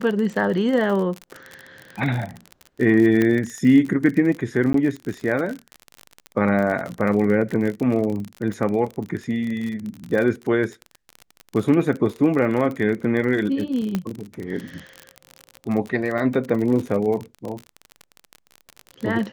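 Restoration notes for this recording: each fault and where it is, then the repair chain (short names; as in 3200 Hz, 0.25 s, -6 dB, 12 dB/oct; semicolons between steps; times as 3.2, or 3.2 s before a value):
crackle 42/s -26 dBFS
3.22 pop -9 dBFS
4.73–4.74 gap 13 ms
13.95 pop -11 dBFS
16.18 gap 3.1 ms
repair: de-click; interpolate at 4.73, 13 ms; interpolate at 16.18, 3.1 ms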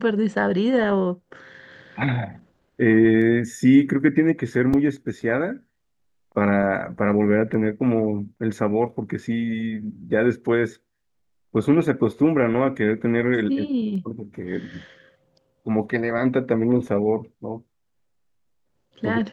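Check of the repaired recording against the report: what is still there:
3.22 pop
13.95 pop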